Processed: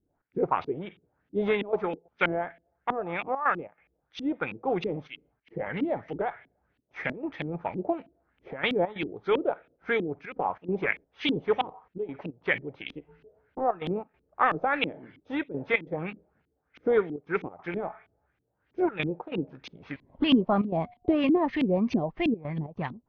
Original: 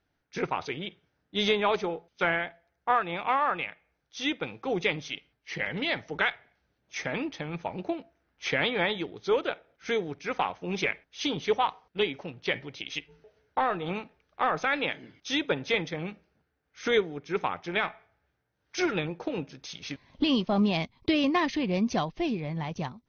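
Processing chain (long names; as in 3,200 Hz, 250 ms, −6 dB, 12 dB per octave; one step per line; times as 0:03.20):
0:20.59–0:21.14: steady tone 720 Hz −50 dBFS
gate pattern "xx.xxxxxxxxxxxx." 139 BPM −12 dB
auto-filter low-pass saw up 3.1 Hz 250–3,100 Hz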